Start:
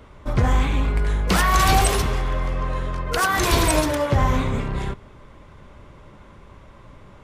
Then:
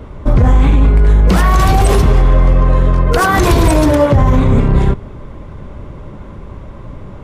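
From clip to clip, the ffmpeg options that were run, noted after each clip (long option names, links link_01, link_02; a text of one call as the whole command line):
ffmpeg -i in.wav -af "tiltshelf=frequency=860:gain=6,alimiter=level_in=11.5dB:limit=-1dB:release=50:level=0:latency=1,volume=-1dB" out.wav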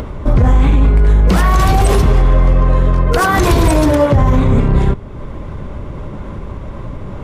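ffmpeg -i in.wav -af "acompressor=mode=upward:threshold=-16dB:ratio=2.5,volume=-1dB" out.wav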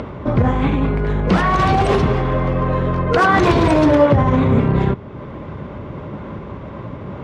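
ffmpeg -i in.wav -af "highpass=110,lowpass=3600" out.wav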